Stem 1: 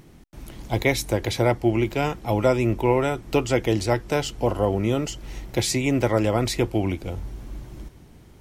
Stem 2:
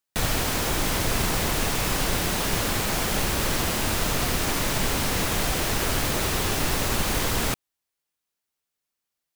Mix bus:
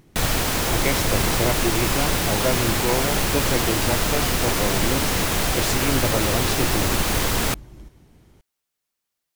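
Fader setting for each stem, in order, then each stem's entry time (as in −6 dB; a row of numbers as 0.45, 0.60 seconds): −4.0, +3.0 decibels; 0.00, 0.00 seconds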